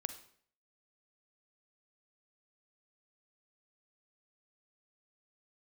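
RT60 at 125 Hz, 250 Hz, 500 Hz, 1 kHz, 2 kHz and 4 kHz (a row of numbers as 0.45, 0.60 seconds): 0.60, 0.60, 0.60, 0.55, 0.55, 0.50 seconds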